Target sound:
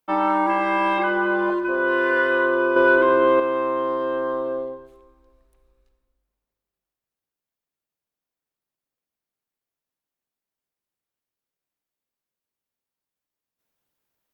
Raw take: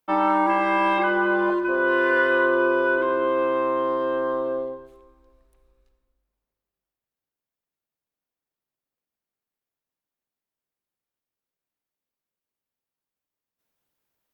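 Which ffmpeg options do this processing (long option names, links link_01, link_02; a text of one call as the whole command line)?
ffmpeg -i in.wav -filter_complex "[0:a]asettb=1/sr,asplit=3[link_01][link_02][link_03];[link_01]atrim=end=2.764[link_04];[link_02]atrim=start=2.76:end=3.4,asetpts=PTS-STARTPTS,afade=type=in:duration=0.004:curve=qsin,afade=type=out:start_time=0.636:duration=0.004:curve=qsin,acontrast=52[link_05];[link_03]atrim=start=3.396[link_06];[link_04][link_05]acrossfade=duration=0.004:curve1=hsin:curve2=qsin[link_07];[link_07][link_06]acrossfade=duration=0.004:curve1=qsin:curve2=hsin" out.wav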